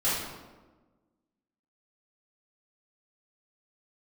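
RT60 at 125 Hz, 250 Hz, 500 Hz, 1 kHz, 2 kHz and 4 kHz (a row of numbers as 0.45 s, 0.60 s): 1.4 s, 1.7 s, 1.4 s, 1.2 s, 0.90 s, 0.75 s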